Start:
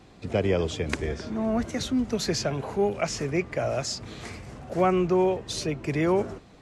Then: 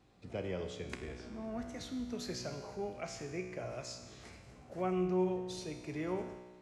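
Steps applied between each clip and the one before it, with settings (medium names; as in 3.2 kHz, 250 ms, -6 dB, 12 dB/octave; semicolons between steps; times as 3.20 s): feedback comb 61 Hz, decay 1.4 s, harmonics all, mix 80%; trim -3.5 dB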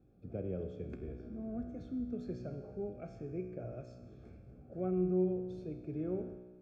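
boxcar filter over 45 samples; trim +2.5 dB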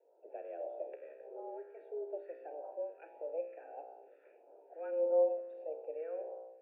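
mistuned SSB +160 Hz 330–2200 Hz; phase shifter stages 2, 1.6 Hz, lowest notch 790–1800 Hz; trim +8 dB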